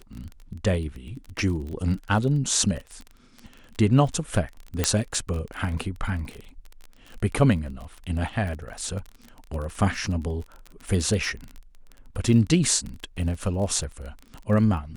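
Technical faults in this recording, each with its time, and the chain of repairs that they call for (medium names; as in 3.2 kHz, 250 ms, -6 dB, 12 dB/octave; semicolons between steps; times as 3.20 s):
crackle 26 per s -31 dBFS
4.84 s: pop -5 dBFS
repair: de-click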